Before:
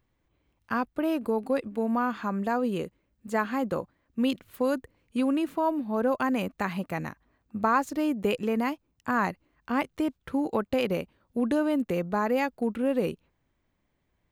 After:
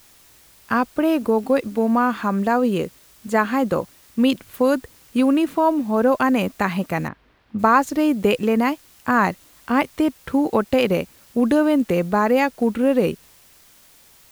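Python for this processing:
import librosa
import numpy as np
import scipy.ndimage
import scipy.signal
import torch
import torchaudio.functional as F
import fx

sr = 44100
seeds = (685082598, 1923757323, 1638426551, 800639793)

y = fx.quant_dither(x, sr, seeds[0], bits=10, dither='triangular')
y = fx.air_absorb(y, sr, metres=370.0, at=(7.07, 7.58), fade=0.02)
y = y * librosa.db_to_amplitude(8.5)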